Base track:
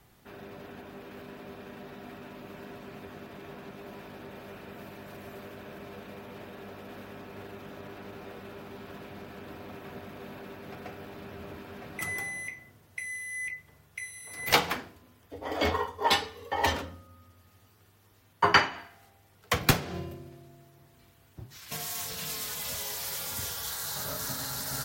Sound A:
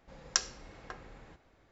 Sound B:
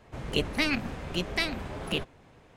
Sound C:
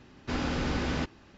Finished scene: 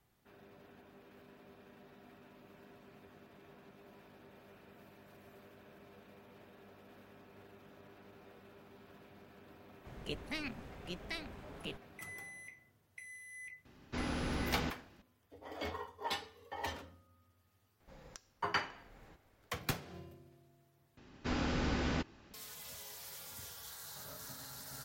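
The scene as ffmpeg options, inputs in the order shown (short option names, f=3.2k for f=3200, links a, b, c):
-filter_complex "[3:a]asplit=2[a][b];[0:a]volume=-14dB[c];[1:a]acompressor=threshold=-46dB:ratio=16:attack=20:release=460:knee=1:detection=rms[d];[c]asplit=2[e][f];[e]atrim=end=20.974[g];[b]atrim=end=1.37,asetpts=PTS-STARTPTS,volume=-4.5dB[h];[f]atrim=start=22.336[i];[2:a]atrim=end=2.56,asetpts=PTS-STARTPTS,volume=-14dB,afade=t=in:d=0.004:c=hsin,afade=t=out:st=2.556:d=0.004:c=hsin,adelay=9730[j];[a]atrim=end=1.37,asetpts=PTS-STARTPTS,volume=-7dB,afade=t=in:d=0.004:c=hsin,afade=t=out:st=1.366:d=0.004:c=hsin,adelay=13650[k];[d]atrim=end=1.71,asetpts=PTS-STARTPTS,volume=-4.5dB,afade=t=in:d=0.004:c=hsin,afade=t=out:st=1.706:d=0.004:c=hsin,adelay=784980S[l];[g][h]acrossfade=d=0.004:c1=hsin:c2=hsin[m];[m][i]acrossfade=d=0.004:c1=hsin:c2=hsin[n];[n][j][k][l]amix=inputs=4:normalize=0"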